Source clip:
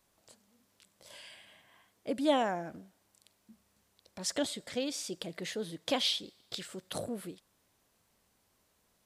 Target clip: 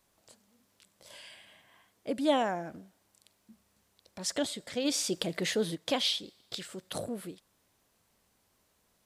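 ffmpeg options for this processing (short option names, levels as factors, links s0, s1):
-filter_complex "[0:a]asplit=3[s0][s1][s2];[s0]afade=t=out:st=4.84:d=0.02[s3];[s1]acontrast=69,afade=t=in:st=4.84:d=0.02,afade=t=out:st=5.74:d=0.02[s4];[s2]afade=t=in:st=5.74:d=0.02[s5];[s3][s4][s5]amix=inputs=3:normalize=0,volume=1.12"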